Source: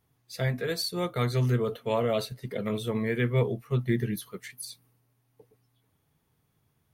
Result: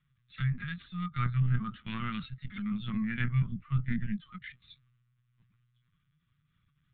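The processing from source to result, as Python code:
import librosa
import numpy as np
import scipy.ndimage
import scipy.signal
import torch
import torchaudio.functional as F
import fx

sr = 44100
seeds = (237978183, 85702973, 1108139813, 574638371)

y = fx.self_delay(x, sr, depth_ms=0.084)
y = scipy.signal.sosfilt(scipy.signal.ellip(3, 1.0, 40, [220.0, 1200.0], 'bandstop', fs=sr, output='sos'), y)
y = fx.env_lowpass_down(y, sr, base_hz=2200.0, full_db=-28.0)
y = fx.lpc_vocoder(y, sr, seeds[0], excitation='pitch_kept', order=16)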